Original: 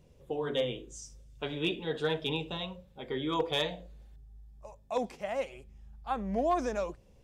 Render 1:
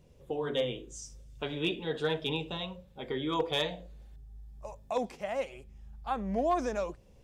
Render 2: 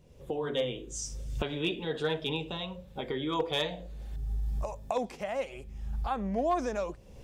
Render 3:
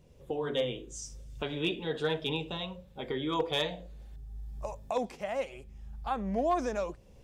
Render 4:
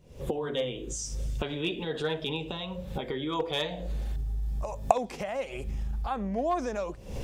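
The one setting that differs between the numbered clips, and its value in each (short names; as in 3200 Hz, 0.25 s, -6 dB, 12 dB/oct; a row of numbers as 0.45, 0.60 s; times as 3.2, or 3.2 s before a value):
recorder AGC, rising by: 5.1, 33, 14, 86 dB/s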